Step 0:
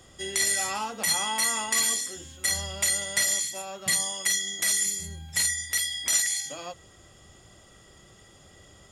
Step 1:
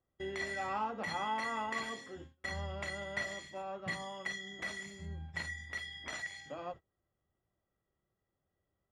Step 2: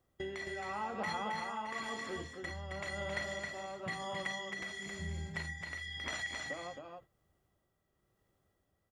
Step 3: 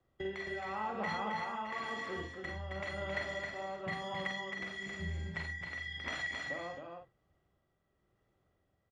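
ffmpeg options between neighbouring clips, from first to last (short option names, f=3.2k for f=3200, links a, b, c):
-af "agate=range=-27dB:threshold=-42dB:ratio=16:detection=peak,lowpass=1.6k,volume=-3dB"
-filter_complex "[0:a]acompressor=threshold=-47dB:ratio=2.5,tremolo=f=0.97:d=0.47,asplit=2[a][b];[b]aecho=0:1:268:0.596[c];[a][c]amix=inputs=2:normalize=0,volume=8dB"
-filter_complex "[0:a]acrossover=split=100|750|3800[a][b][c][d];[d]adynamicsmooth=sensitivity=6.5:basefreq=5.3k[e];[a][b][c][e]amix=inputs=4:normalize=0,asplit=2[f][g];[g]adelay=47,volume=-5dB[h];[f][h]amix=inputs=2:normalize=0"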